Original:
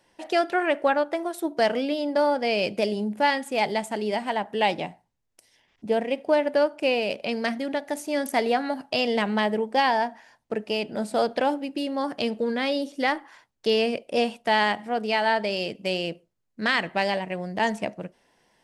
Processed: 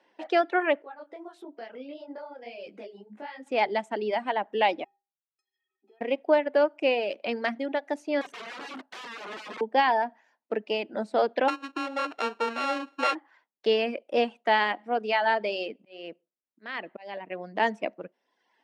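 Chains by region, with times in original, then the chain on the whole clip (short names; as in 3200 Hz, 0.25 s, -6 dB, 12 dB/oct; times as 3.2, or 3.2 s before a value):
0.82–3.47 compressor 4:1, threshold -35 dBFS + detuned doubles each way 56 cents
4.84–6.01 compressor, threshold -32 dBFS + metallic resonator 380 Hz, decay 0.33 s, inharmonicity 0.03
8.21–9.61 notch 810 Hz, Q 7.7 + compressor 10:1, threshold -27 dBFS + wrapped overs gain 31.5 dB
11.48–13.15 sample sorter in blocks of 32 samples + bell 190 Hz -13 dB 0.54 oct
15.67–17.56 auto swell 0.513 s + air absorption 52 m
whole clip: HPF 240 Hz 24 dB/oct; reverb removal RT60 0.86 s; LPF 3200 Hz 12 dB/oct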